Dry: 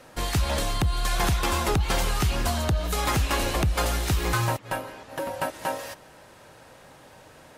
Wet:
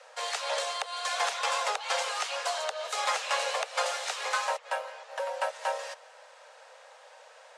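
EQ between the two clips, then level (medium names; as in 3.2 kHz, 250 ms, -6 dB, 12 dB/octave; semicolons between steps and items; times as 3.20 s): steep high-pass 470 Hz 96 dB/octave; low-pass 8.3 kHz 24 dB/octave; -1.5 dB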